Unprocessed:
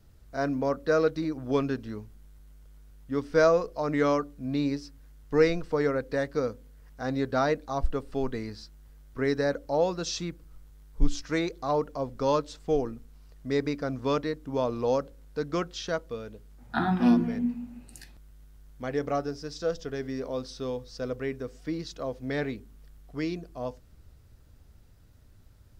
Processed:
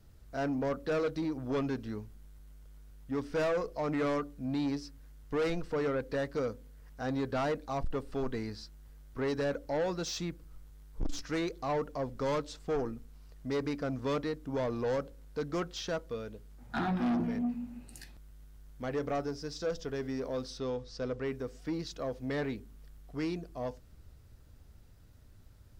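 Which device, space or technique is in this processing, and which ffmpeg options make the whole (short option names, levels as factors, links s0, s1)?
saturation between pre-emphasis and de-emphasis: -filter_complex "[0:a]highshelf=f=4400:g=11,asoftclip=type=tanh:threshold=0.0501,highshelf=f=4400:g=-11,asettb=1/sr,asplit=3[s0][s1][s2];[s0]atrim=end=20.584[s3];[s1]atrim=start=20.58:end=21.26,asetpts=PTS-STARTPTS,afade=t=in:d=0.004:c=qsin,afade=t=out:st=0.676:d=0.004:c=qsin,lowpass=6900[s4];[s2]atrim=start=21.256[s5];[s3][s4]acrossfade=d=0.004:c1=hsin:c2=qsin[s6];[s6][s5]acrossfade=d=0.004:c1=qsin:c2=hsin,volume=0.891"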